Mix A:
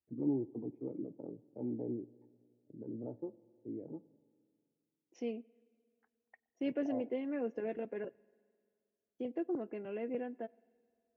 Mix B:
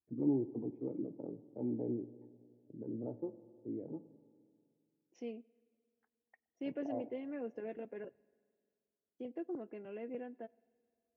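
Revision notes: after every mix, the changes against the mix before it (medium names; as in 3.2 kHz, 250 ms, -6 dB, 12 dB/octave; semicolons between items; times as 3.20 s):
first voice: send +7.0 dB; second voice -5.0 dB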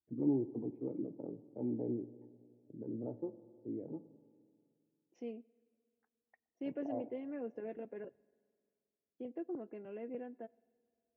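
second voice: add treble shelf 2.3 kHz -7.5 dB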